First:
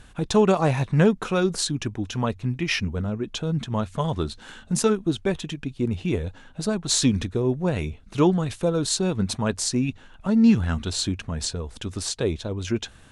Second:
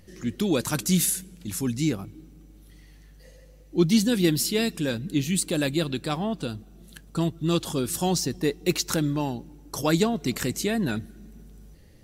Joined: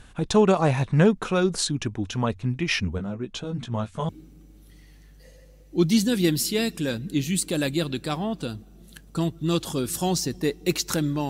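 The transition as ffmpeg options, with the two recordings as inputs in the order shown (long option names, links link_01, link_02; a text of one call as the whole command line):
ffmpeg -i cue0.wav -i cue1.wav -filter_complex "[0:a]asplit=3[link_01][link_02][link_03];[link_01]afade=type=out:start_time=2.97:duration=0.02[link_04];[link_02]flanger=delay=15.5:depth=4.5:speed=0.32,afade=type=in:start_time=2.97:duration=0.02,afade=type=out:start_time=4.09:duration=0.02[link_05];[link_03]afade=type=in:start_time=4.09:duration=0.02[link_06];[link_04][link_05][link_06]amix=inputs=3:normalize=0,apad=whole_dur=11.29,atrim=end=11.29,atrim=end=4.092[link_07];[1:a]atrim=start=2.088:end=9.29[link_08];[link_07][link_08]acrossfade=duration=0.004:curve1=hsin:curve2=hsin" out.wav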